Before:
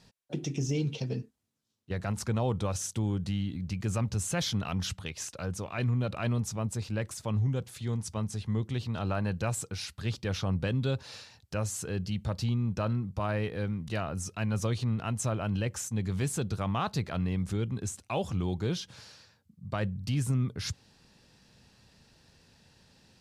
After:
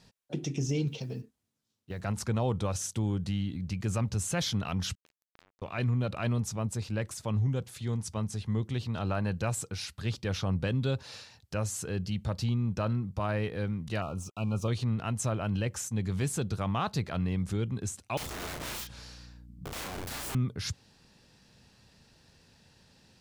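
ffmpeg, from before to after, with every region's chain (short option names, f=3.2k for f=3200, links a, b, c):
-filter_complex "[0:a]asettb=1/sr,asplit=3[a][b][c];[a]atrim=end=0.884[d];[b]atrim=start=0.88:end=2.05,asetpts=PTS-STARTPTS,afade=t=in:d=0.004:c=qsin,afade=t=out:st=1.166:d=0.004:c=qsin,acompressor=threshold=-36dB:ratio=2:attack=3.2:release=140:knee=1:detection=peak,acrusher=bits=9:mode=log:mix=0:aa=0.000001[e];[c]atrim=start=2.046[f];[d][e]acrossfade=d=0.004:c1=hsin:c2=qsin[g];[g][f]acrossfade=d=0.004:c1=qsin:c2=hsin,asettb=1/sr,asplit=3[h][i][j];[h]atrim=end=4.954[k];[i]atrim=start=4.95:end=5.62,asetpts=PTS-STARTPTS,afade=t=in:d=0.004:c=qsin,afade=t=out:st=0.666:d=0.004:c=qsin,highshelf=f=2.1k:g=-10,acompressor=threshold=-38dB:ratio=6:attack=3.2:release=140:knee=1:detection=peak,acrusher=bits=4:mix=0:aa=0.5[l];[j]atrim=start=5.616[m];[k][l]acrossfade=d=0.004:c1=hsin:c2=qsin[n];[n][m]acrossfade=d=0.004:c1=qsin:c2=hsin,asettb=1/sr,asplit=3[o][p][q];[o]atrim=end=14.024[r];[p]atrim=start=14.02:end=14.68,asetpts=PTS-STARTPTS,afade=t=in:d=0.004:c=qsin,afade=t=out:st=0.656:d=0.004:c=qsin,highshelf=f=3.4k:g=-6.5,aeval=exprs='sgn(val(0))*max(abs(val(0))-0.00251,0)':c=same,asuperstop=centerf=1800:order=20:qfactor=2[s];[q]atrim=start=14.676[t];[r][s]acrossfade=d=0.004:c1=hsin:c2=qsin[u];[u][t]acrossfade=d=0.004:c1=qsin:c2=hsin,asettb=1/sr,asplit=3[v][w][x];[v]atrim=end=18.174[y];[w]atrim=start=18.17:end=20.35,asetpts=PTS-STARTPTS,afade=t=in:d=0.004:c=qsin,afade=t=out:st=2.176:d=0.004:c=qsin,aeval=exprs='(mod(56.2*val(0)+1,2)-1)/56.2':c=same,aeval=exprs='val(0)+0.00224*(sin(2*PI*60*n/s)+sin(2*PI*2*60*n/s)/2+sin(2*PI*3*60*n/s)/3+sin(2*PI*4*60*n/s)/4+sin(2*PI*5*60*n/s)/5)':c=same,asplit=2[z][aa];[aa]adelay=34,volume=-4dB[ab];[z][ab]amix=inputs=2:normalize=0,atrim=end_sample=96138[ac];[x]atrim=start=20.346[ad];[y][ac]acrossfade=d=0.004:c1=hsin:c2=qsin[ae];[ae][ad]acrossfade=d=0.004:c1=qsin:c2=hsin"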